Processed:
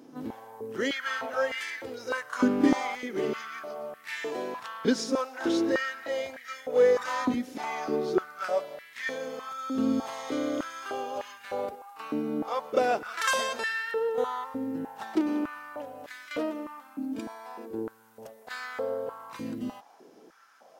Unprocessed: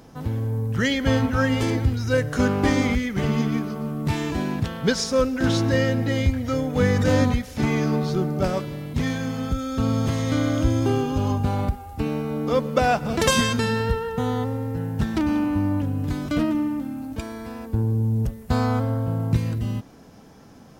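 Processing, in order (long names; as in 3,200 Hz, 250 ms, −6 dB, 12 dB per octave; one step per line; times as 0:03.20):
backwards echo 32 ms −12 dB
high-pass on a step sequencer 3.3 Hz 280–1,800 Hz
level −8.5 dB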